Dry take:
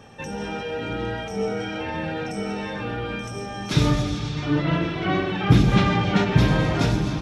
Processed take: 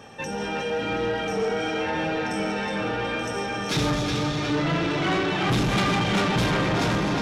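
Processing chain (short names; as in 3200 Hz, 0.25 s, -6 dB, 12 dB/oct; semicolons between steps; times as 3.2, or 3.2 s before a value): low shelf 170 Hz -9 dB; tape echo 0.365 s, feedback 73%, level -5 dB, low-pass 5900 Hz; soft clip -22.5 dBFS, distortion -10 dB; 4.9–6.51 high shelf 5200 Hz +5.5 dB; gain +3.5 dB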